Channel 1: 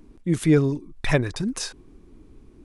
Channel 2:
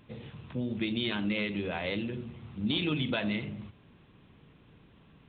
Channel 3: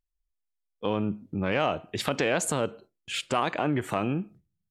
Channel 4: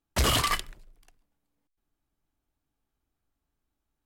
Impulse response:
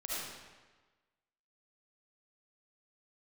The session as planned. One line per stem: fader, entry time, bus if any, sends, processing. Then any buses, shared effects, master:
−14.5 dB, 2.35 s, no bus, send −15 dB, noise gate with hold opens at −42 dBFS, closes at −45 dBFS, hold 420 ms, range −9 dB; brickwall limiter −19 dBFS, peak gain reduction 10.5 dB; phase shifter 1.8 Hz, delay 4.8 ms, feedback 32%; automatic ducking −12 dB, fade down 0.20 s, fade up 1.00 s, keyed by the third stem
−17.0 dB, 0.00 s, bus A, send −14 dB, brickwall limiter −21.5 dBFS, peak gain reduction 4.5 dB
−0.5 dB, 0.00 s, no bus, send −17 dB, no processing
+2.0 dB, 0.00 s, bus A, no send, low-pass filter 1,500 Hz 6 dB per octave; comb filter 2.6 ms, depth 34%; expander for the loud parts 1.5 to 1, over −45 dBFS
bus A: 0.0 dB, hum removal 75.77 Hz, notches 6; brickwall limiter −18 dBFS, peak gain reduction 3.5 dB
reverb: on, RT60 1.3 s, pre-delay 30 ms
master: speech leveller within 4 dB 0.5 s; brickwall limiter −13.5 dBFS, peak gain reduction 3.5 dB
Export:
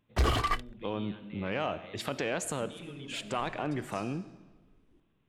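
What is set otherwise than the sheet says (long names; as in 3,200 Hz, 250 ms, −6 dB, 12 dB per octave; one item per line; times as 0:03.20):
stem 3 −0.5 dB → −7.5 dB
master: missing speech leveller within 4 dB 0.5 s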